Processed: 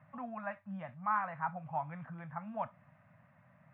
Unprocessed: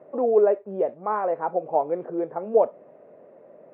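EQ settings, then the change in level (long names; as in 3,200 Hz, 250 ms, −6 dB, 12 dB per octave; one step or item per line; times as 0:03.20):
Chebyshev band-stop filter 110–1,500 Hz, order 2
bass and treble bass +9 dB, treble −10 dB
notch filter 1,400 Hz, Q 30
+2.5 dB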